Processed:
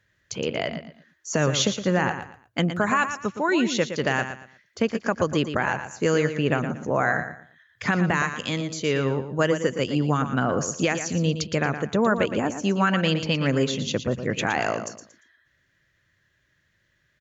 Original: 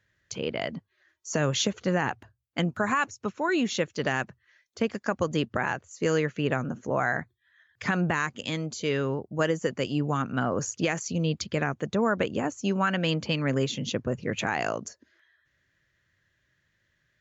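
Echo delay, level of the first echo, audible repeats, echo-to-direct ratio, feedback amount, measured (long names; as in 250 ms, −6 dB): 116 ms, −9.5 dB, 3, −9.0 dB, 27%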